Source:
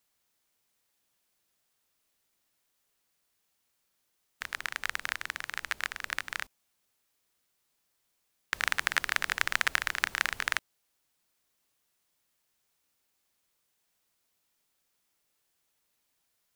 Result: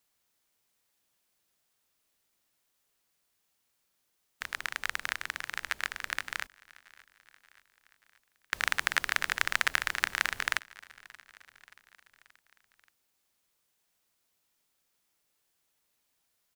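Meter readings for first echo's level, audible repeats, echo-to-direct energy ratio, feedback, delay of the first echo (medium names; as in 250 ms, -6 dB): -23.0 dB, 3, -21.5 dB, 58%, 579 ms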